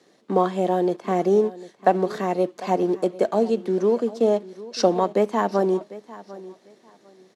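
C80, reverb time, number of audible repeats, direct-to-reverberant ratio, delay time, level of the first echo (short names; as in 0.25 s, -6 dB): none, none, 2, none, 0.748 s, -18.0 dB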